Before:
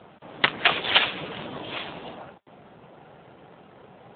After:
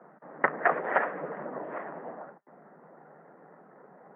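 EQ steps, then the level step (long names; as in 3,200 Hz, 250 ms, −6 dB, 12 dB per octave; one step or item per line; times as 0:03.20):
Chebyshev band-pass filter 150–1,900 Hz, order 5
dynamic equaliser 570 Hz, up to +7 dB, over −43 dBFS, Q 1.1
low-shelf EQ 190 Hz −6 dB
−2.5 dB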